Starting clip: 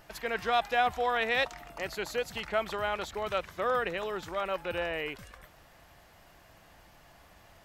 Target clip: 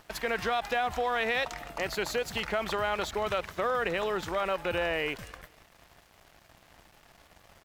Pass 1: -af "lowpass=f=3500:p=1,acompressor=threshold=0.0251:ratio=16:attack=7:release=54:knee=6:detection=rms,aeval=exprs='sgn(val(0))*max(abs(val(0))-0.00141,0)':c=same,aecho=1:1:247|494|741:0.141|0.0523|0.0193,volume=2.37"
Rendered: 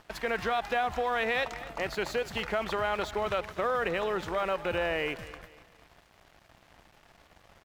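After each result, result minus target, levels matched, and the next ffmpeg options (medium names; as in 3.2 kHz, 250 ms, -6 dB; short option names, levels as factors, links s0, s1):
echo-to-direct +9 dB; 8 kHz band -5.0 dB
-af "lowpass=f=3500:p=1,acompressor=threshold=0.0251:ratio=16:attack=7:release=54:knee=6:detection=rms,aeval=exprs='sgn(val(0))*max(abs(val(0))-0.00141,0)':c=same,aecho=1:1:247|494:0.0501|0.0185,volume=2.37"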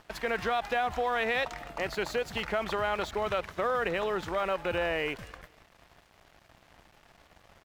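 8 kHz band -5.0 dB
-af "lowpass=f=12000:p=1,acompressor=threshold=0.0251:ratio=16:attack=7:release=54:knee=6:detection=rms,aeval=exprs='sgn(val(0))*max(abs(val(0))-0.00141,0)':c=same,aecho=1:1:247|494:0.0501|0.0185,volume=2.37"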